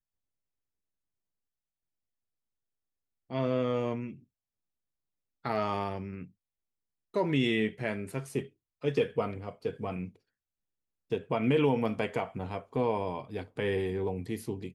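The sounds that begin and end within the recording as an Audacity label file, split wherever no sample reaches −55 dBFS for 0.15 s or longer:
3.300000	4.240000	sound
5.440000	6.300000	sound
7.140000	8.490000	sound
8.820000	10.160000	sound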